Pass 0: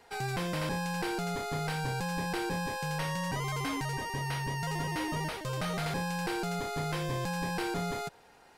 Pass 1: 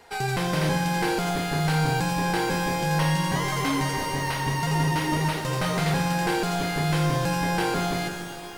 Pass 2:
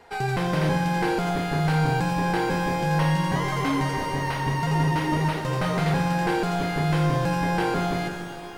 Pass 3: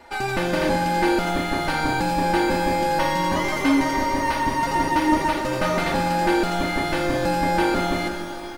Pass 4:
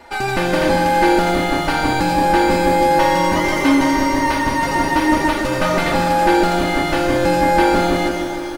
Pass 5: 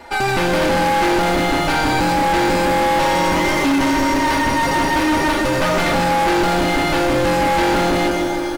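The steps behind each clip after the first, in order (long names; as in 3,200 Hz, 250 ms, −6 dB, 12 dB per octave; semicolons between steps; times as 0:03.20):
reverb with rising layers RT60 2.8 s, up +12 semitones, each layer −8 dB, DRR 4.5 dB; level +6.5 dB
high-shelf EQ 3,500 Hz −10 dB; level +1.5 dB
comb filter 3.4 ms, depth 96%; level +2 dB
repeating echo 157 ms, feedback 57%, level −8.5 dB; level +4.5 dB
hard clipping −17.5 dBFS, distortion −8 dB; level +3.5 dB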